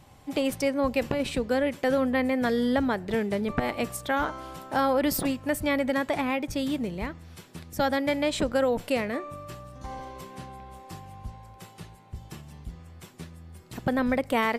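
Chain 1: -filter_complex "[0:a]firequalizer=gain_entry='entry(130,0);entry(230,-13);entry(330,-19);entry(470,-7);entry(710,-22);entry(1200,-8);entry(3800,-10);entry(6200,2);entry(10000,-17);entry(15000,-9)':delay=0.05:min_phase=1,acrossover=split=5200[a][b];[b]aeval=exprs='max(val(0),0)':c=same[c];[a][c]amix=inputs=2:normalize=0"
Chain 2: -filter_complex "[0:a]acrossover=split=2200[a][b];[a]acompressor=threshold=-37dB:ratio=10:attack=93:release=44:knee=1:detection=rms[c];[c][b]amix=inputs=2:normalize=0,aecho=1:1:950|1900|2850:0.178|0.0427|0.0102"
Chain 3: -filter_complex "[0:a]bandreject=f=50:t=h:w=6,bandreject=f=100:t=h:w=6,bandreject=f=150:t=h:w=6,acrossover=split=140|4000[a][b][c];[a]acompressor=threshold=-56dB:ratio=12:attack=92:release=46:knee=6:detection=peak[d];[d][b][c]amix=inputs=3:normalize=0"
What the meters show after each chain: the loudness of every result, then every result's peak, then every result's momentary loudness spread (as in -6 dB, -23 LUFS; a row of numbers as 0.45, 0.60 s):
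-39.5, -35.0, -27.5 LUFS; -17.0, -17.0, -10.0 dBFS; 13, 12, 21 LU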